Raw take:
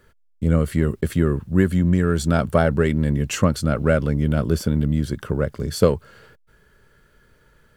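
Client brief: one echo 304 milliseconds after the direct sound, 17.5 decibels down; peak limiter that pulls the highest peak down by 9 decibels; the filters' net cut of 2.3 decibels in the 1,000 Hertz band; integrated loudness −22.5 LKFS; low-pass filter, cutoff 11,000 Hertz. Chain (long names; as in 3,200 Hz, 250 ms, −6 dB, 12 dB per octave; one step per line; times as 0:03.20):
low-pass filter 11,000 Hz
parametric band 1,000 Hz −3.5 dB
brickwall limiter −10.5 dBFS
single-tap delay 304 ms −17.5 dB
level +0.5 dB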